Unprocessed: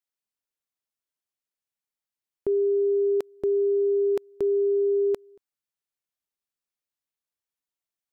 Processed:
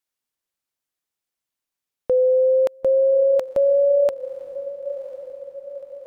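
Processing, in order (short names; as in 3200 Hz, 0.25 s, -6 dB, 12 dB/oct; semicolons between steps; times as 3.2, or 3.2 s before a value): speed glide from 109% -> 159%; on a send: diffused feedback echo 1 s, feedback 56%, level -14.5 dB; on the sum: gain +6 dB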